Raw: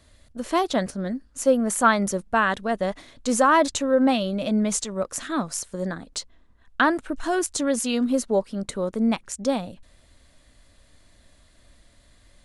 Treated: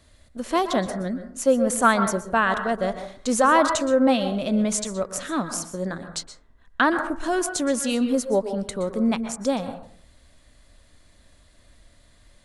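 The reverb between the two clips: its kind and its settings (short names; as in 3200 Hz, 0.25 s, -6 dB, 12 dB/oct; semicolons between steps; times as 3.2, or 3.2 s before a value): plate-style reverb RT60 0.51 s, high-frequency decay 0.3×, pre-delay 0.11 s, DRR 8.5 dB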